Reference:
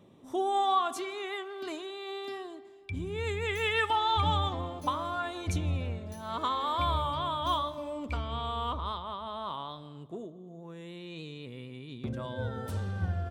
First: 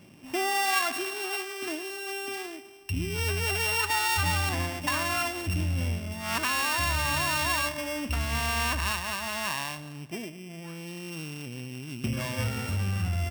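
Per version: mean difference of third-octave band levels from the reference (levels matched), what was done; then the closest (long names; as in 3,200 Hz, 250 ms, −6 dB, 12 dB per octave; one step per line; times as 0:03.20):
10.0 dB: samples sorted by size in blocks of 16 samples
parametric band 460 Hz −8.5 dB 0.54 octaves
in parallel at −2 dB: compressor whose output falls as the input rises −33 dBFS, ratio −0.5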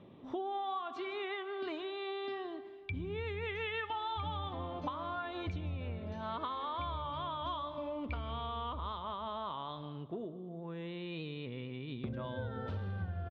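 5.5 dB: single-tap delay 155 ms −20.5 dB
downward compressor, threshold −38 dBFS, peak gain reduction 15 dB
low-pass filter 3,700 Hz 24 dB per octave
level +2 dB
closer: second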